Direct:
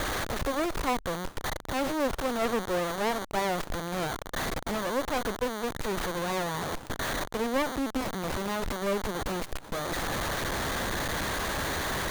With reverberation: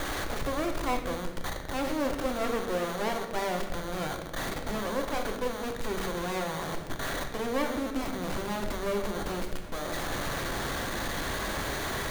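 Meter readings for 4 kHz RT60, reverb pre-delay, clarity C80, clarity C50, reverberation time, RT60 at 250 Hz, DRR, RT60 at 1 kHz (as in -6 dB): 0.80 s, 3 ms, 8.5 dB, 6.5 dB, 1.2 s, 2.1 s, 3.5 dB, 0.90 s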